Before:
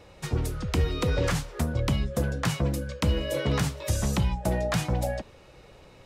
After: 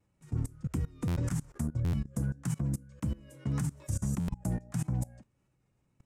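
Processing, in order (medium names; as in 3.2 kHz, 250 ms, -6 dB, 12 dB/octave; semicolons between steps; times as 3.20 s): graphic EQ 125/250/500/4000/8000 Hz +10/+8/-8/-10/+9 dB; vibrato 1.7 Hz 44 cents; level held to a coarse grid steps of 22 dB; dynamic bell 2.8 kHz, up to -5 dB, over -52 dBFS, Q 1.1; buffer glitch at 1.07/1.84/4.19 s, samples 512, times 7; trim -8 dB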